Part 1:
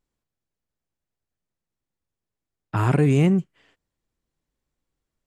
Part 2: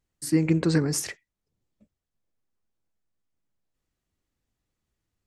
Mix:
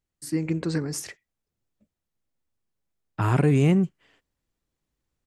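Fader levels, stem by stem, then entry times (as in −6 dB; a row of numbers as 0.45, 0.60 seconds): −1.5, −4.5 decibels; 0.45, 0.00 seconds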